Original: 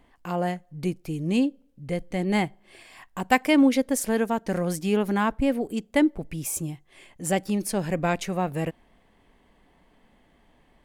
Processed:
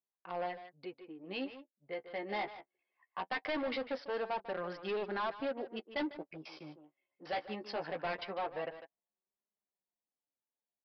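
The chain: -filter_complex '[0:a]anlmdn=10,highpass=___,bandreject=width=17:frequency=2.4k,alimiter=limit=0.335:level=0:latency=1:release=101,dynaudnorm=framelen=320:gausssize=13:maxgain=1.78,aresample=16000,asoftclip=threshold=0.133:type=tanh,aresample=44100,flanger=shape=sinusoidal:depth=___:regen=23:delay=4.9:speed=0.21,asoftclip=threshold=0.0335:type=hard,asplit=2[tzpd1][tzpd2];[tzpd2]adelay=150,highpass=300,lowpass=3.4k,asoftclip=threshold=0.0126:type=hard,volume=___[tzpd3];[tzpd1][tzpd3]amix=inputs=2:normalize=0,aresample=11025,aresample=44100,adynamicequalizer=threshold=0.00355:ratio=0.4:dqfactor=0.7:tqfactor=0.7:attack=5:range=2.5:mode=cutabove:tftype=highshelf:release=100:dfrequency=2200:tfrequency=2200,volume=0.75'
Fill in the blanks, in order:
630, 9.6, 0.447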